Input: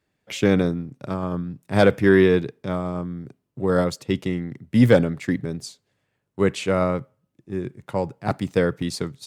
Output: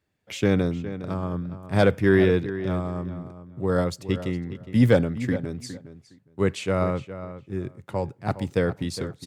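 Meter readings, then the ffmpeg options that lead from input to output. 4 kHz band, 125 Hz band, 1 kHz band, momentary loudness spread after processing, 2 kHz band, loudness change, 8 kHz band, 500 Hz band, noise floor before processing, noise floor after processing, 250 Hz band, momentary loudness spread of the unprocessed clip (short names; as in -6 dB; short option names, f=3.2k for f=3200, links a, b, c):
-3.5 dB, -0.5 dB, -3.5 dB, 15 LU, -3.5 dB, -3.0 dB, -3.5 dB, -3.0 dB, -76 dBFS, -61 dBFS, -3.0 dB, 15 LU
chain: -filter_complex "[0:a]equalizer=f=87:w=2.2:g=6.5,asplit=2[a][b];[b]adelay=412,lowpass=f=3.2k:p=1,volume=-12.5dB,asplit=2[c][d];[d]adelay=412,lowpass=f=3.2k:p=1,volume=0.17[e];[a][c][e]amix=inputs=3:normalize=0,volume=-3.5dB"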